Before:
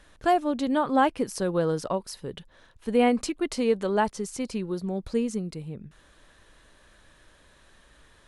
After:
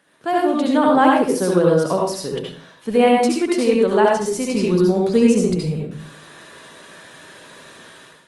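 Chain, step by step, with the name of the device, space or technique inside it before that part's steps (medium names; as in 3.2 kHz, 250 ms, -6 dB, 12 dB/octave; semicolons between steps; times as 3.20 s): far-field microphone of a smart speaker (reverberation RT60 0.45 s, pre-delay 63 ms, DRR -2.5 dB; high-pass 140 Hz 24 dB/octave; level rider gain up to 14.5 dB; trim -1.5 dB; Opus 32 kbps 48 kHz)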